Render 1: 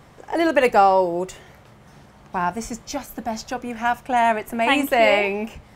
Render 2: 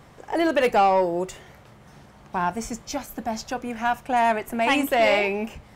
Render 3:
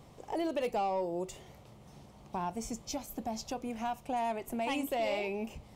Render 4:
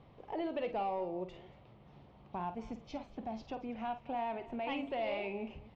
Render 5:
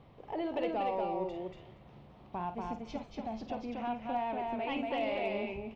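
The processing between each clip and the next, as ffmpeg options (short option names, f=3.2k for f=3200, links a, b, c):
-af "asoftclip=type=tanh:threshold=-10.5dB,volume=-1dB"
-af "equalizer=f=1.6k:t=o:w=0.77:g=-12.5,acompressor=threshold=-31dB:ratio=2,volume=-4.5dB"
-filter_complex "[0:a]lowpass=f=3.5k:w=0.5412,lowpass=f=3.5k:w=1.3066,asplit=2[a][b];[b]aecho=0:1:50|234:0.282|0.119[c];[a][c]amix=inputs=2:normalize=0,volume=-4dB"
-af "aecho=1:1:237:0.708,asoftclip=type=hard:threshold=-25.5dB,volume=1.5dB"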